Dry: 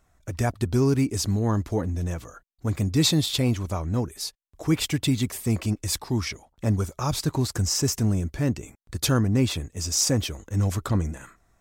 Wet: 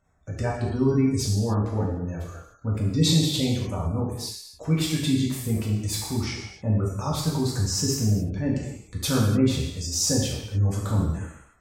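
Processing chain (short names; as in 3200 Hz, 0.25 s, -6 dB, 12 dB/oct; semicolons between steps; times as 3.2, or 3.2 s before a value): spectral gate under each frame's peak -30 dB strong; non-linear reverb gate 0.32 s falling, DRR -4 dB; gain -6 dB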